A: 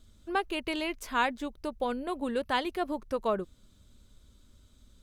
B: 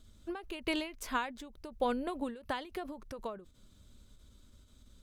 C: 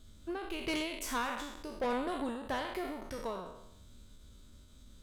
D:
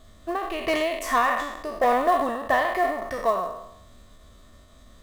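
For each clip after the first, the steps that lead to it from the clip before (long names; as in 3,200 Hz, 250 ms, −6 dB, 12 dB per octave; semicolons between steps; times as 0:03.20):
every ending faded ahead of time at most 110 dB per second
peak hold with a decay on every bin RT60 0.81 s; soft clipping −29.5 dBFS, distortion −11 dB; level +1 dB
hollow resonant body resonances 690/1,100/1,800 Hz, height 18 dB, ringing for 25 ms; in parallel at −4.5 dB: floating-point word with a short mantissa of 2 bits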